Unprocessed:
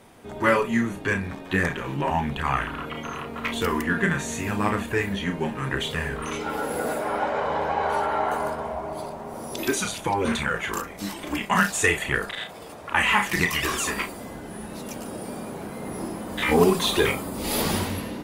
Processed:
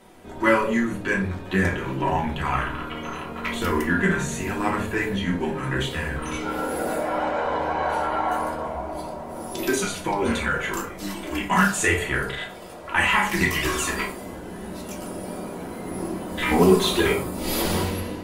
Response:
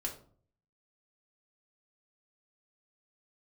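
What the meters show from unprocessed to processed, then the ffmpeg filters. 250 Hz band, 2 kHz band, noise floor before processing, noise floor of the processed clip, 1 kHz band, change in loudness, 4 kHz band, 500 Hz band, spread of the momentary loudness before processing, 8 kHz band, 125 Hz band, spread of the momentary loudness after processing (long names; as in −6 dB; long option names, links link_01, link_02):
+2.5 dB, +0.5 dB, −39 dBFS, −37 dBFS, +1.0 dB, +1.0 dB, −0.5 dB, +1.0 dB, 14 LU, 0.0 dB, +2.0 dB, 14 LU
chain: -filter_complex "[1:a]atrim=start_sample=2205[link_01];[0:a][link_01]afir=irnorm=-1:irlink=0"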